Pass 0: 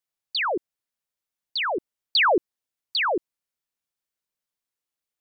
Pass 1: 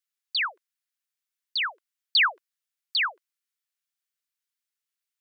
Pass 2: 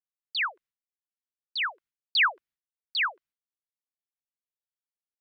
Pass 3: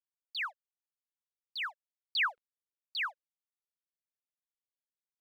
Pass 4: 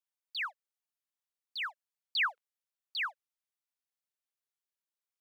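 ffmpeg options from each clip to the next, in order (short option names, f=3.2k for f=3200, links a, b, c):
-af "highpass=f=1.3k:w=0.5412,highpass=f=1.3k:w=1.3066"
-af "bass=f=250:g=10,treble=f=4k:g=-10,agate=range=-33dB:threshold=-54dB:ratio=3:detection=peak"
-af "aeval=exprs='sgn(val(0))*max(abs(val(0))-0.002,0)':c=same,volume=-7.5dB"
-af "highpass=580"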